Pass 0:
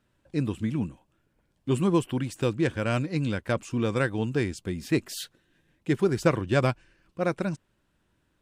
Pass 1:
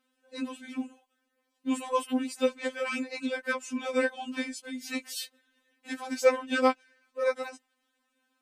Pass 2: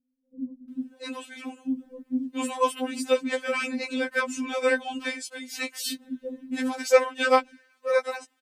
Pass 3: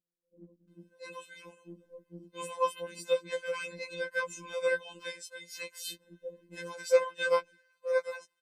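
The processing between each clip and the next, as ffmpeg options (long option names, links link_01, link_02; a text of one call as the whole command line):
ffmpeg -i in.wav -af "highpass=frequency=460:poles=1,afftfilt=real='re*3.46*eq(mod(b,12),0)':imag='im*3.46*eq(mod(b,12),0)':win_size=2048:overlap=0.75,volume=2.5dB" out.wav
ffmpeg -i in.wav -filter_complex "[0:a]acrossover=split=300[link_01][link_02];[link_02]adelay=680[link_03];[link_01][link_03]amix=inputs=2:normalize=0,volume=5dB" out.wav
ffmpeg -i in.wav -af "afftfilt=real='hypot(re,im)*cos(PI*b)':imag='0':win_size=1024:overlap=0.75,volume=-5dB" out.wav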